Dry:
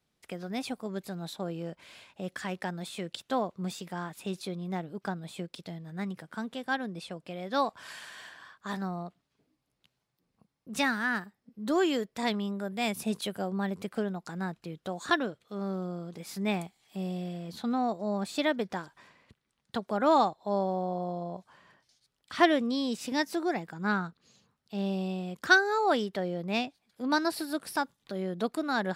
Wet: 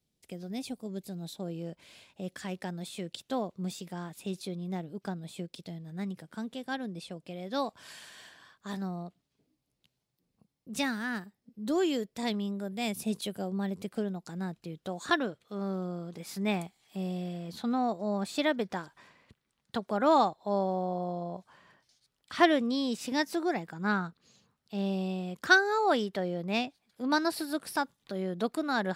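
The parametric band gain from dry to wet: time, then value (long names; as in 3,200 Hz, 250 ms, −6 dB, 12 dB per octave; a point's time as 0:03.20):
parametric band 1,300 Hz 1.9 octaves
0:01.20 −14.5 dB
0:01.70 −7.5 dB
0:14.50 −7.5 dB
0:15.19 −0.5 dB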